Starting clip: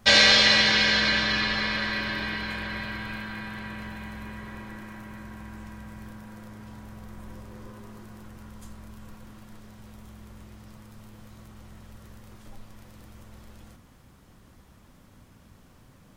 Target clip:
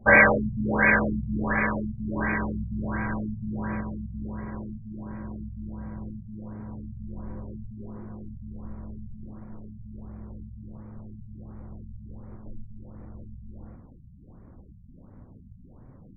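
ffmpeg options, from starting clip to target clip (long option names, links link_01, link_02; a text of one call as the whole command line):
ffmpeg -i in.wav -filter_complex "[0:a]asettb=1/sr,asplit=3[link_01][link_02][link_03];[link_01]atrim=end=2.164[link_04];[link_02]atrim=start=2.16:end=3.81,asetpts=PTS-STARTPTS,afade=type=in:duration=0.004:curve=qsin,afade=type=out:start_time=1.646:duration=0.004:curve=qsin,aeval=exprs='val(0)+0.5*0.0141*sgn(val(0))':channel_layout=same[link_05];[link_03]atrim=start=3.806[link_06];[link_04][link_05]acrossfade=duration=0.004:curve1=hsin:curve2=qsin[link_07];[link_07][link_06]acrossfade=duration=0.004:curve1=qsin:curve2=hsin,adynamicsmooth=sensitivity=2:basefreq=920,afftfilt=real='re*lt(b*sr/1024,200*pow(2500/200,0.5+0.5*sin(2*PI*1.4*pts/sr)))':imag='im*lt(b*sr/1024,200*pow(2500/200,0.5+0.5*sin(2*PI*1.4*pts/sr)))':win_size=1024:overlap=0.75,volume=6dB" out.wav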